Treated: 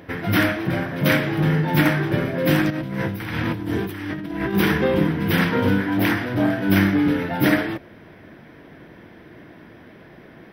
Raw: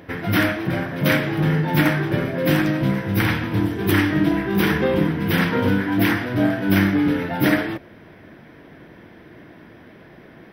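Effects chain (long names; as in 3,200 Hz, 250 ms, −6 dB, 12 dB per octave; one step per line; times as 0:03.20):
0:02.70–0:04.54: compressor whose output falls as the input rises −27 dBFS, ratio −1
0:05.81–0:06.48: saturating transformer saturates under 410 Hz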